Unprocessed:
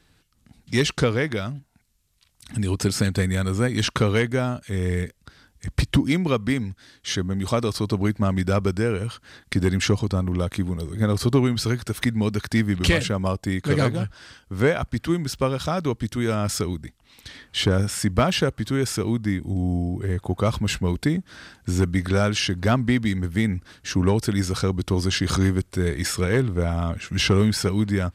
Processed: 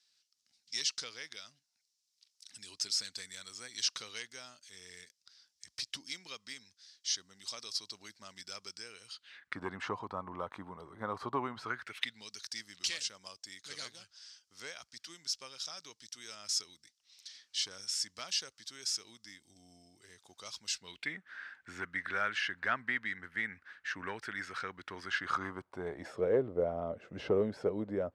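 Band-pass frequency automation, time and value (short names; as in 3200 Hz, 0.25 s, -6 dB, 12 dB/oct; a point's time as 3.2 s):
band-pass, Q 3.2
9.11 s 5300 Hz
9.61 s 1000 Hz
11.62 s 1000 Hz
12.27 s 5500 Hz
20.75 s 5500 Hz
21.17 s 1700 Hz
25.02 s 1700 Hz
26.24 s 540 Hz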